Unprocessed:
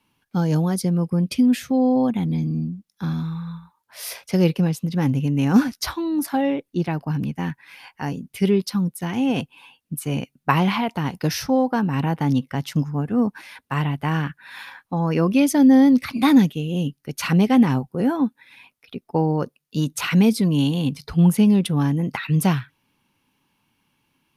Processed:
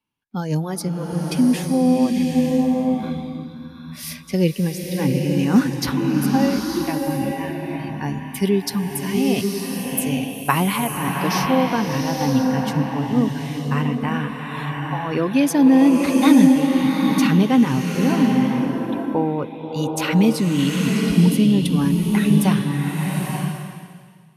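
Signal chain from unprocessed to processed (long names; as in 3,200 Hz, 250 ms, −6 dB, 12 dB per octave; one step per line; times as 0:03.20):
0:08.33–0:10.60: high-shelf EQ 7,200 Hz +11 dB
noise reduction from a noise print of the clip's start 15 dB
slow-attack reverb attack 900 ms, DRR 0.5 dB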